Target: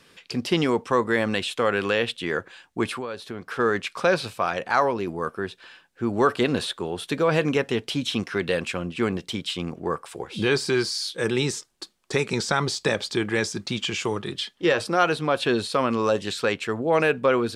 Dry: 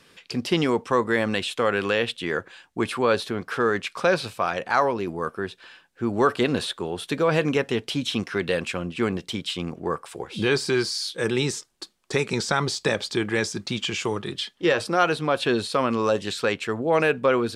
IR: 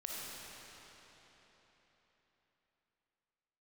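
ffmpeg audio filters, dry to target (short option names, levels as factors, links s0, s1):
-filter_complex "[0:a]asettb=1/sr,asplit=3[s0][s1][s2];[s0]atrim=end=2.914[s3];[s1]atrim=start=2.91:end=3.59,asetpts=PTS-STARTPTS,afade=t=in:d=0.004:c=qsin,afade=t=out:st=0.676:d=0.004:c=qsin,acompressor=threshold=0.0316:ratio=6[s4];[s2]atrim=start=3.586[s5];[s3][s4]acrossfade=d=0.004:c1=hsin:c2=qsin[s6];[s6][s5]acrossfade=d=0.004:c1=qsin:c2=hsin"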